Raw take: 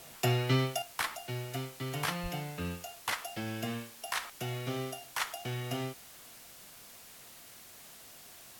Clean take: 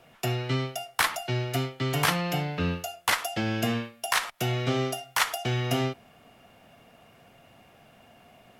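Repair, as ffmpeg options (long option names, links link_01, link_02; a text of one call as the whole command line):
ffmpeg -i in.wav -filter_complex "[0:a]asplit=3[link_01][link_02][link_03];[link_01]afade=type=out:start_time=2.22:duration=0.02[link_04];[link_02]highpass=frequency=140:width=0.5412,highpass=frequency=140:width=1.3066,afade=type=in:start_time=2.22:duration=0.02,afade=type=out:start_time=2.34:duration=0.02[link_05];[link_03]afade=type=in:start_time=2.34:duration=0.02[link_06];[link_04][link_05][link_06]amix=inputs=3:normalize=0,afwtdn=0.0025,asetnsamples=nb_out_samples=441:pad=0,asendcmd='0.82 volume volume 9.5dB',volume=0dB" out.wav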